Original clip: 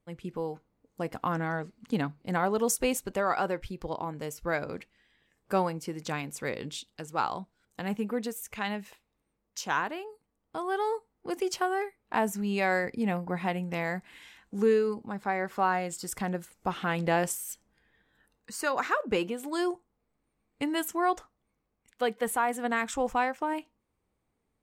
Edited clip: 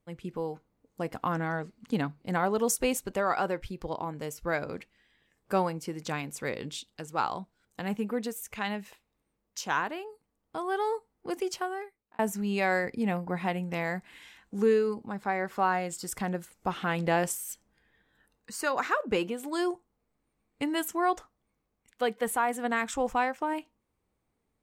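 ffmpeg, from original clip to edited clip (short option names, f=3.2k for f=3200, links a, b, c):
-filter_complex "[0:a]asplit=2[a][b];[a]atrim=end=12.19,asetpts=PTS-STARTPTS,afade=t=out:st=11.3:d=0.89[c];[b]atrim=start=12.19,asetpts=PTS-STARTPTS,afade=t=in:d=0.004:c=hsin[d];[c][d]concat=n=2:v=0:a=1"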